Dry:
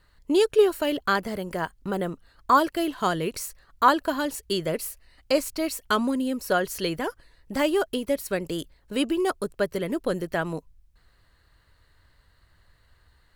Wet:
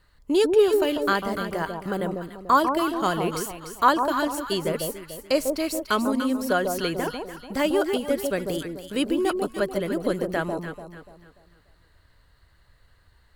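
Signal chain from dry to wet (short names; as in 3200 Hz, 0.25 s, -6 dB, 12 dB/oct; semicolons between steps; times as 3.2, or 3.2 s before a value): echo with dull and thin repeats by turns 0.146 s, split 1000 Hz, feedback 59%, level -4 dB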